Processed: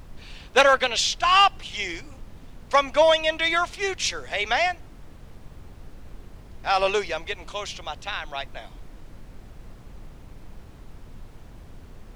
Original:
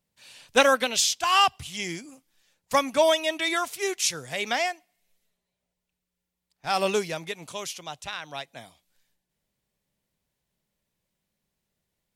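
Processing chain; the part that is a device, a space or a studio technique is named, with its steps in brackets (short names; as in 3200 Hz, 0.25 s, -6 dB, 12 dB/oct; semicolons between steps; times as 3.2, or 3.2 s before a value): aircraft cabin announcement (BPF 460–4200 Hz; soft clip -12 dBFS, distortion -21 dB; brown noise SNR 14 dB); gain +5 dB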